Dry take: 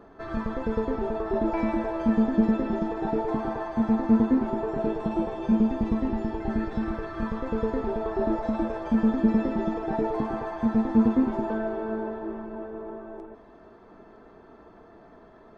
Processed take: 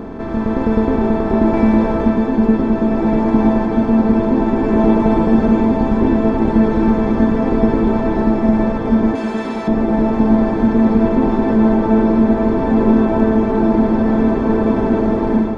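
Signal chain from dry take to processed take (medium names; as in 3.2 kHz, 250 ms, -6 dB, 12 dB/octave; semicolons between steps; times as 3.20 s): spectral levelling over time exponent 0.4; bass shelf 220 Hz +3.5 dB; echo that smears into a reverb 1505 ms, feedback 61%, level -3 dB; on a send at -12 dB: reverberation RT60 4.6 s, pre-delay 3 ms; on the sum: level rider; 9.15–9.68 s: tilt EQ +4 dB/octave; trim -1 dB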